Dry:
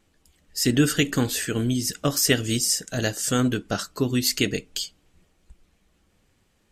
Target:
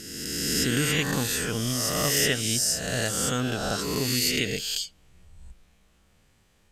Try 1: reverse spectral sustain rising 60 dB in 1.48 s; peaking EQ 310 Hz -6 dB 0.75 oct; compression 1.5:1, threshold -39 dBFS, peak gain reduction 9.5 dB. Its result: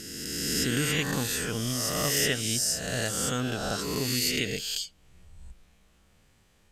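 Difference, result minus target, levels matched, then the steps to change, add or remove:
compression: peak gain reduction +2.5 dB
change: compression 1.5:1, threshold -31.5 dBFS, peak gain reduction 7 dB

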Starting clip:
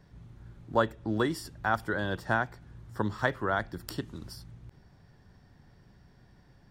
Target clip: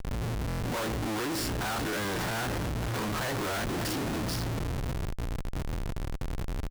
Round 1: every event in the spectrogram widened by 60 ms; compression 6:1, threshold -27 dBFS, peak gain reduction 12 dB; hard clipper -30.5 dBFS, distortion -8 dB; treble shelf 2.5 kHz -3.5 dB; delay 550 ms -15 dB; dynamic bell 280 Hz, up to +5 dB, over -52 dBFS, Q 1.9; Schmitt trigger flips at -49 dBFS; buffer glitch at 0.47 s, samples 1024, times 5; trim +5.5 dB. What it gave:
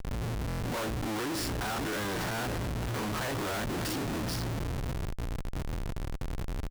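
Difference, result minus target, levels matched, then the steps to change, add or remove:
compression: peak gain reduction +12 dB
remove: compression 6:1, threshold -27 dBFS, peak gain reduction 12 dB

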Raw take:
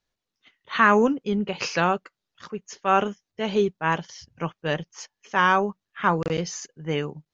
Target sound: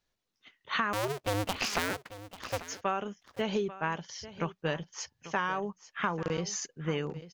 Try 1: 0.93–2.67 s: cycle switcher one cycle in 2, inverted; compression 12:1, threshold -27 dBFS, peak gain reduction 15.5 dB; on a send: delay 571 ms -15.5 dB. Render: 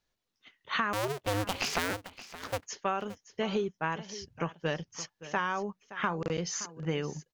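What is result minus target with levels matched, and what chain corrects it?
echo 270 ms early
0.93–2.67 s: cycle switcher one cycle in 2, inverted; compression 12:1, threshold -27 dBFS, peak gain reduction 15.5 dB; on a send: delay 841 ms -15.5 dB

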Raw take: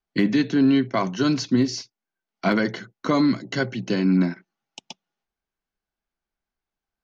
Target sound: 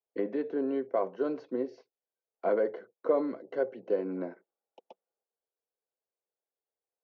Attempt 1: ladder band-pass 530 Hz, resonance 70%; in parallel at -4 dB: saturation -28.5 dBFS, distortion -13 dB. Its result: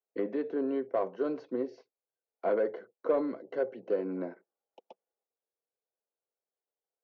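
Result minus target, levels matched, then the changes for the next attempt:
saturation: distortion +16 dB
change: saturation -17 dBFS, distortion -29 dB

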